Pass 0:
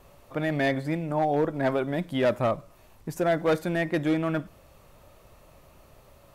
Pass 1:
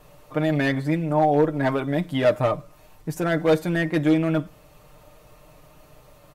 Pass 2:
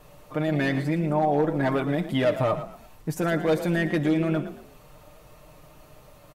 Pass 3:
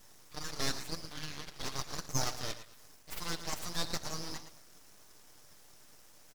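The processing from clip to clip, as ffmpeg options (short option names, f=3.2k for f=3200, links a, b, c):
-af "aecho=1:1:6.6:0.65,volume=2dB"
-filter_complex "[0:a]alimiter=limit=-15.5dB:level=0:latency=1,asplit=2[a][b];[b]asplit=3[c][d][e];[c]adelay=114,afreqshift=37,volume=-12dB[f];[d]adelay=228,afreqshift=74,volume=-22.2dB[g];[e]adelay=342,afreqshift=111,volume=-32.3dB[h];[f][g][h]amix=inputs=3:normalize=0[i];[a][i]amix=inputs=2:normalize=0"
-af "asoftclip=type=hard:threshold=-18.5dB,highpass=f=2.8k:t=q:w=2.5,aeval=exprs='abs(val(0))':c=same,volume=1dB"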